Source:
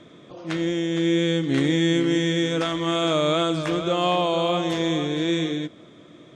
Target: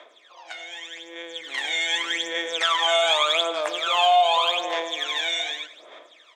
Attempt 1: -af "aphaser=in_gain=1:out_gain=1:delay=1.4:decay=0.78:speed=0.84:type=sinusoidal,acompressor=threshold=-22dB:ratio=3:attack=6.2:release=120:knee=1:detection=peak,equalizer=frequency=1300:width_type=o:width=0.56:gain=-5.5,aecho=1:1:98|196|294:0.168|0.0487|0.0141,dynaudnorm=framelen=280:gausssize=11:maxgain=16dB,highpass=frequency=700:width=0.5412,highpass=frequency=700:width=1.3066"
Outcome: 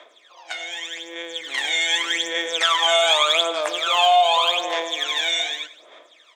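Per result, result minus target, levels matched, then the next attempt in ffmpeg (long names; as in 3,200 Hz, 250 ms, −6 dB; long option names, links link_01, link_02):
downward compressor: peak gain reduction −6.5 dB; 8,000 Hz band +3.0 dB
-af "aphaser=in_gain=1:out_gain=1:delay=1.4:decay=0.78:speed=0.84:type=sinusoidal,acompressor=threshold=-31.5dB:ratio=3:attack=6.2:release=120:knee=1:detection=peak,equalizer=frequency=1300:width_type=o:width=0.56:gain=-5.5,aecho=1:1:98|196|294:0.168|0.0487|0.0141,dynaudnorm=framelen=280:gausssize=11:maxgain=16dB,highpass=frequency=700:width=0.5412,highpass=frequency=700:width=1.3066"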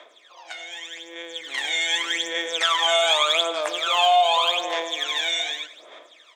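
8,000 Hz band +2.5 dB
-af "aphaser=in_gain=1:out_gain=1:delay=1.4:decay=0.78:speed=0.84:type=sinusoidal,acompressor=threshold=-31.5dB:ratio=3:attack=6.2:release=120:knee=1:detection=peak,equalizer=frequency=1300:width_type=o:width=0.56:gain=-5.5,aecho=1:1:98|196|294:0.168|0.0487|0.0141,dynaudnorm=framelen=280:gausssize=11:maxgain=16dB,highpass=frequency=700:width=0.5412,highpass=frequency=700:width=1.3066,highshelf=frequency=5400:gain=-5.5"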